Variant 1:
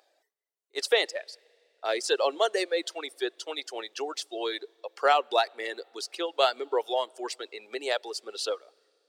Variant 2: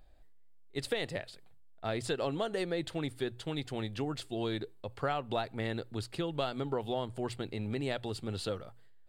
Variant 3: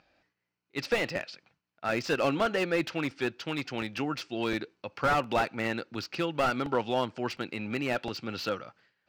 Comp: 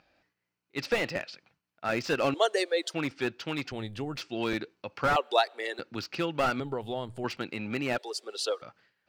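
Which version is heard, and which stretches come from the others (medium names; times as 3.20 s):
3
2.34–2.94 s: from 1
3.72–4.17 s: from 2
5.16–5.79 s: from 1
6.60–7.24 s: from 2
7.98–8.62 s: from 1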